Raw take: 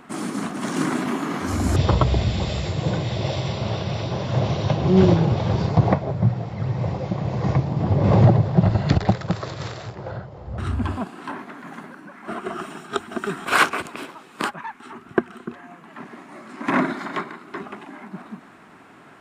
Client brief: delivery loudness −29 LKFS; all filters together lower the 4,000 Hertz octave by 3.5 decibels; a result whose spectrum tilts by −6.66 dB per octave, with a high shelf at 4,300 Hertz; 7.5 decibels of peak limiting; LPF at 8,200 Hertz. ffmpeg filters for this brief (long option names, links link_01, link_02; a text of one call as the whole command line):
ffmpeg -i in.wav -af "lowpass=8200,equalizer=frequency=4000:width_type=o:gain=-8.5,highshelf=frequency=4300:gain=7.5,volume=-4dB,alimiter=limit=-16dB:level=0:latency=1" out.wav